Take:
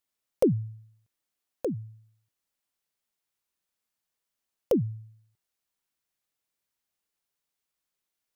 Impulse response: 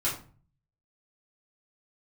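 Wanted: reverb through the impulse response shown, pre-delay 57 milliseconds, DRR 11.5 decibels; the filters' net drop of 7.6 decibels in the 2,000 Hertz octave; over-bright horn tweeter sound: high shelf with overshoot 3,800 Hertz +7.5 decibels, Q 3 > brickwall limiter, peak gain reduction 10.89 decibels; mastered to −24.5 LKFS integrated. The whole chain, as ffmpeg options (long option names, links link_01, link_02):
-filter_complex "[0:a]equalizer=frequency=2000:width_type=o:gain=-6.5,asplit=2[link_01][link_02];[1:a]atrim=start_sample=2205,adelay=57[link_03];[link_02][link_03]afir=irnorm=-1:irlink=0,volume=-19.5dB[link_04];[link_01][link_04]amix=inputs=2:normalize=0,highshelf=frequency=3800:width_type=q:width=3:gain=7.5,volume=9.5dB,alimiter=limit=-12dB:level=0:latency=1"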